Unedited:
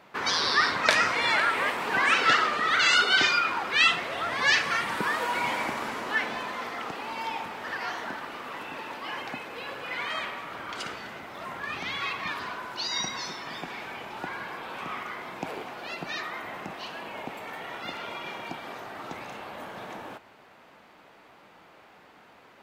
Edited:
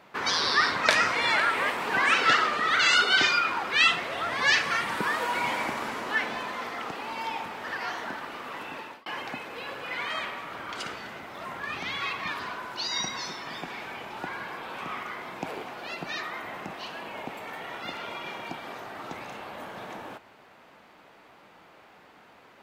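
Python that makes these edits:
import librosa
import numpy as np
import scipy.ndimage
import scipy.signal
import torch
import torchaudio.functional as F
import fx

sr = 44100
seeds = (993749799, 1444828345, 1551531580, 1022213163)

y = fx.edit(x, sr, fx.fade_out_span(start_s=8.66, length_s=0.4, curve='qsin'), tone=tone)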